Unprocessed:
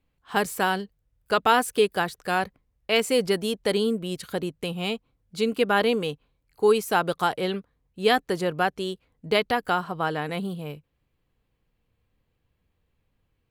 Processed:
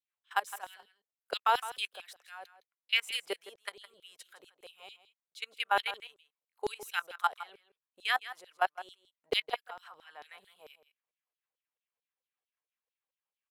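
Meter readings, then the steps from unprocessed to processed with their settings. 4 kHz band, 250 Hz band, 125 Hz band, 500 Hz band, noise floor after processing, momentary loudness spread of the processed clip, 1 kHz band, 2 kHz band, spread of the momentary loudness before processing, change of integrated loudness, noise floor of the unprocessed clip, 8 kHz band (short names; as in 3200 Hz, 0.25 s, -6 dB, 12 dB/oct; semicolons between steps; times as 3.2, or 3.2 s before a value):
-6.0 dB, -28.5 dB, under -30 dB, -18.5 dB, under -85 dBFS, 22 LU, -8.5 dB, -7.5 dB, 13 LU, -8.5 dB, -75 dBFS, -12.5 dB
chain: level quantiser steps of 21 dB; low shelf 370 Hz -9.5 dB; LFO high-pass saw down 4.5 Hz 470–4600 Hz; notch 4500 Hz, Q 7.8; on a send: echo 0.162 s -14.5 dB; on the sum: gain -6 dB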